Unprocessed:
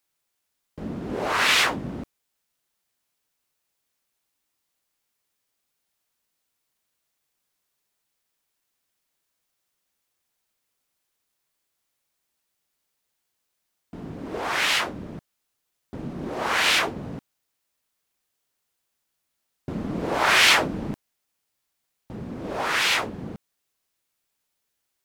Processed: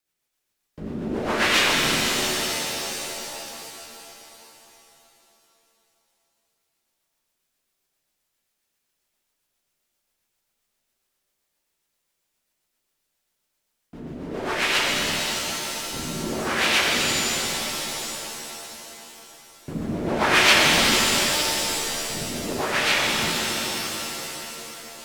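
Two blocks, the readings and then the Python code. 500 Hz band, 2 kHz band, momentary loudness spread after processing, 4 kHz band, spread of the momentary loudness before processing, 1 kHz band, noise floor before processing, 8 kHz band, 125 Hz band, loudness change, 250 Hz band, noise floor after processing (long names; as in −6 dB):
+4.5 dB, +2.0 dB, 19 LU, +4.5 dB, 21 LU, +1.5 dB, −79 dBFS, +8.5 dB, +2.5 dB, 0.0 dB, +4.0 dB, −77 dBFS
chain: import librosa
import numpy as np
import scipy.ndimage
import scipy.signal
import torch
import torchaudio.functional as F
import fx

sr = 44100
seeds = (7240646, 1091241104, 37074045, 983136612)

y = fx.rotary(x, sr, hz=7.5)
y = fx.rev_shimmer(y, sr, seeds[0], rt60_s=3.5, semitones=7, shimmer_db=-2, drr_db=-1.5)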